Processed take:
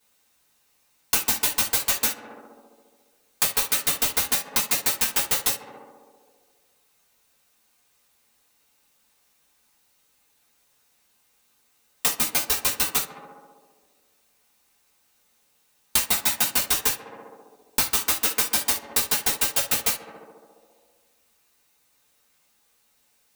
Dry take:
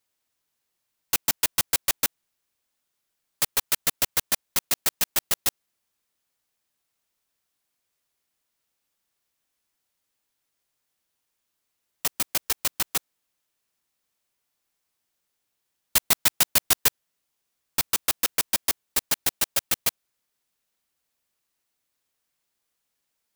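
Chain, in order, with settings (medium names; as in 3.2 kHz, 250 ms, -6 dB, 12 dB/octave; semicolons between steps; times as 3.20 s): on a send: tape echo 68 ms, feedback 85%, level -14 dB, low-pass 1.7 kHz; on the sum: gated-style reverb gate 90 ms falling, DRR -8 dB; compression 6:1, threshold -25 dBFS, peak gain reduction 15.5 dB; trim +5 dB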